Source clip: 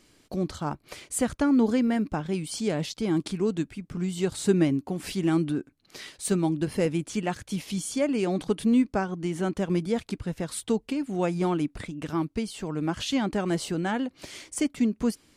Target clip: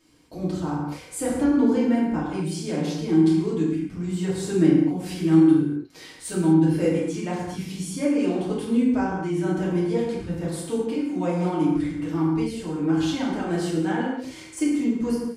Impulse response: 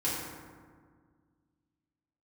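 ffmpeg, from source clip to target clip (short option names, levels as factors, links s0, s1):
-filter_complex "[1:a]atrim=start_sample=2205,afade=t=out:st=0.31:d=0.01,atrim=end_sample=14112[s0];[0:a][s0]afir=irnorm=-1:irlink=0,volume=0.473"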